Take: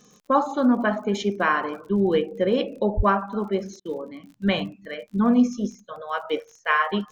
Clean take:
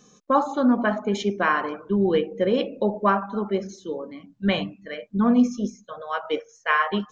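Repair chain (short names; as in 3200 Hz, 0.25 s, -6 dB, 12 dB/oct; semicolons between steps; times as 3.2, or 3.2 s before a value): de-click; de-plosive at 2.96; interpolate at 3.8, 51 ms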